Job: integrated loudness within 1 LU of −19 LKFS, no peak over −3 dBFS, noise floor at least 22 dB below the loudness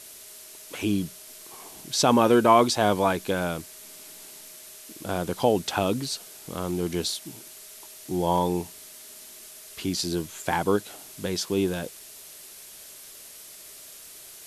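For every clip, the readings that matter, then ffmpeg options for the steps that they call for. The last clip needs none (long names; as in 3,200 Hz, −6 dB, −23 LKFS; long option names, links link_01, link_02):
background noise floor −46 dBFS; target noise floor −48 dBFS; integrated loudness −25.5 LKFS; sample peak −6.5 dBFS; target loudness −19.0 LKFS
→ -af "afftdn=noise_reduction=6:noise_floor=-46"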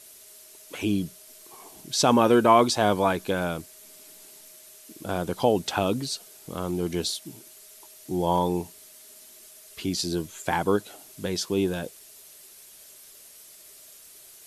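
background noise floor −50 dBFS; integrated loudness −25.5 LKFS; sample peak −6.5 dBFS; target loudness −19.0 LKFS
→ -af "volume=6.5dB,alimiter=limit=-3dB:level=0:latency=1"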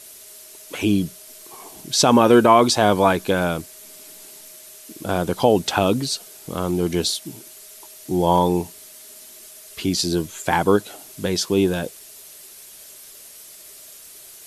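integrated loudness −19.5 LKFS; sample peak −3.0 dBFS; background noise floor −43 dBFS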